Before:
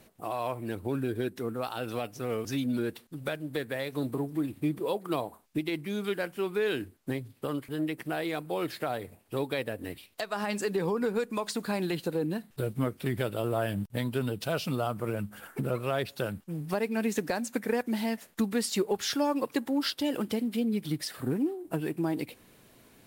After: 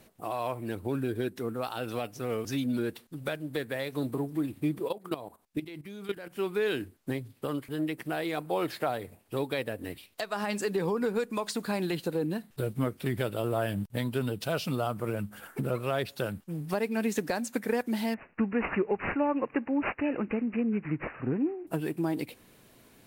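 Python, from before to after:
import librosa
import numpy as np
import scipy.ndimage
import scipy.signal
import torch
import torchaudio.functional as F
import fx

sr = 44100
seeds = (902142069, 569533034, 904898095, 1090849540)

y = fx.level_steps(x, sr, step_db=14, at=(4.87, 6.34), fade=0.02)
y = fx.peak_eq(y, sr, hz=820.0, db=4.5, octaves=1.4, at=(8.37, 8.9))
y = fx.resample_bad(y, sr, factor=8, down='none', up='filtered', at=(18.14, 21.67))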